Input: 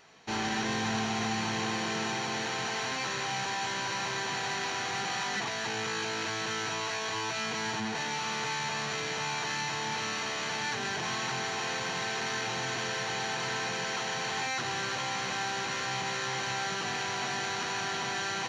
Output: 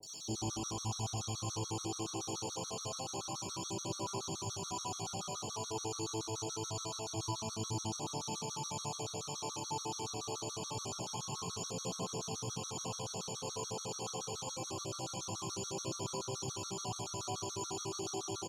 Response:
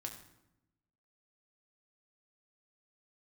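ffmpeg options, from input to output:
-filter_complex "[0:a]acrossover=split=3300[link_01][link_02];[link_02]acompressor=threshold=-47dB:ratio=4:attack=1:release=60[link_03];[link_01][link_03]amix=inputs=2:normalize=0,equalizer=frequency=9700:width=0.51:gain=8.5,acrossover=split=590|1300|5600[link_04][link_05][link_06][link_07];[link_04]acompressor=threshold=-40dB:ratio=4[link_08];[link_05]acompressor=threshold=-40dB:ratio=4[link_09];[link_06]acompressor=threshold=-51dB:ratio=4[link_10];[link_07]acompressor=threshold=-54dB:ratio=4[link_11];[link_08][link_09][link_10][link_11]amix=inputs=4:normalize=0,acrossover=split=210|650|1700[link_12][link_13][link_14][link_15];[link_15]alimiter=level_in=23dB:limit=-24dB:level=0:latency=1,volume=-23dB[link_16];[link_12][link_13][link_14][link_16]amix=inputs=4:normalize=0,aexciter=amount=6.8:drive=6.5:freq=3200,aphaser=in_gain=1:out_gain=1:delay=2.7:decay=0.31:speed=0.25:type=triangular,asuperstop=centerf=1800:order=8:qfactor=1.7,acrossover=split=700|4200[link_17][link_18][link_19];[link_19]adelay=30[link_20];[link_18]adelay=90[link_21];[link_17][link_21][link_20]amix=inputs=3:normalize=0[link_22];[1:a]atrim=start_sample=2205[link_23];[link_22][link_23]afir=irnorm=-1:irlink=0,afftfilt=real='re*gt(sin(2*PI*7*pts/sr)*(1-2*mod(floor(b*sr/1024/1100),2)),0)':imag='im*gt(sin(2*PI*7*pts/sr)*(1-2*mod(floor(b*sr/1024/1100),2)),0)':win_size=1024:overlap=0.75,volume=3dB"

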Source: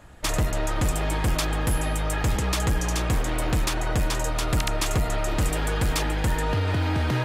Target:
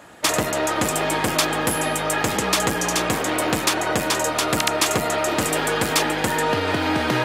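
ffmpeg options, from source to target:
ffmpeg -i in.wav -af "highpass=240,volume=8dB" out.wav

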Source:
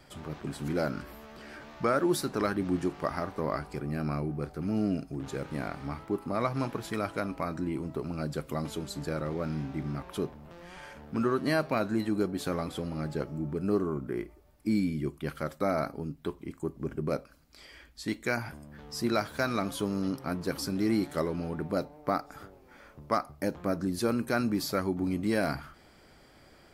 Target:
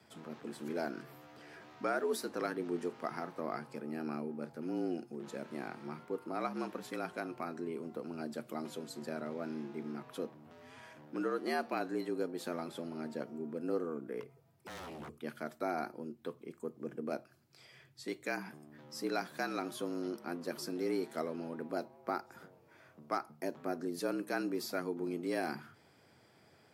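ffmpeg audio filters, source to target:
ffmpeg -i in.wav -filter_complex "[0:a]asettb=1/sr,asplit=3[link_01][link_02][link_03];[link_01]atrim=end=14.204[link_04];[link_02]atrim=start=14.2:end=15.15,asetpts=PTS-STARTPTS,afade=type=in:duration=0.004:curve=qsin,afade=type=out:start_time=0.946:duration=0.004:curve=qsin,aeval=exprs='0.02*(abs(mod(val(0)/0.02+3,4)-2)-1)':channel_layout=same[link_05];[link_03]atrim=start=15.146[link_06];[link_04][link_05]acrossfade=duration=0.004:curve1=hsin:curve2=qsin[link_07];[link_07][link_06]acrossfade=duration=0.004:curve1=qsin:curve2=hsin,afreqshift=78,volume=-7.5dB" out.wav

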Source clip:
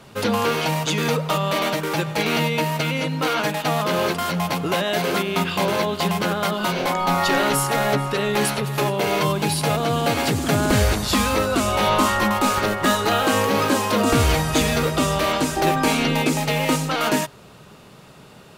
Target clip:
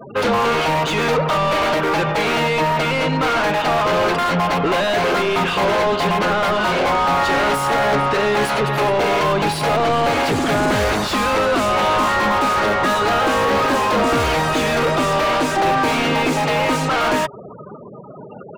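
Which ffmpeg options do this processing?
ffmpeg -i in.wav -filter_complex "[0:a]afftfilt=real='re*gte(hypot(re,im),0.0126)':imag='im*gte(hypot(re,im),0.0126)':win_size=1024:overlap=0.75,asplit=2[link_01][link_02];[link_02]highpass=frequency=720:poles=1,volume=29dB,asoftclip=type=tanh:threshold=-6dB[link_03];[link_01][link_03]amix=inputs=2:normalize=0,lowpass=frequency=1400:poles=1,volume=-6dB,volume=-2.5dB" out.wav

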